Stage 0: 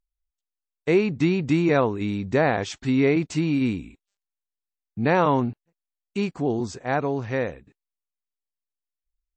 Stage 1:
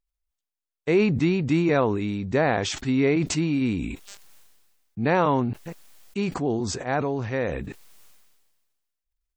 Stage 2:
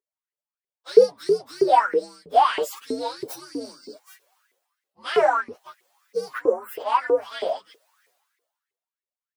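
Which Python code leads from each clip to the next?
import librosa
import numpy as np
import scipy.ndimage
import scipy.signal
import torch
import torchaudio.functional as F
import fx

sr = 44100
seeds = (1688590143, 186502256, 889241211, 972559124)

y1 = fx.sustainer(x, sr, db_per_s=38.0)
y1 = y1 * librosa.db_to_amplitude(-1.5)
y2 = fx.partial_stretch(y1, sr, pct=130)
y2 = fx.filter_lfo_highpass(y2, sr, shape='saw_up', hz=3.1, low_hz=390.0, high_hz=2100.0, q=7.8)
y2 = y2 * librosa.db_to_amplitude(-1.5)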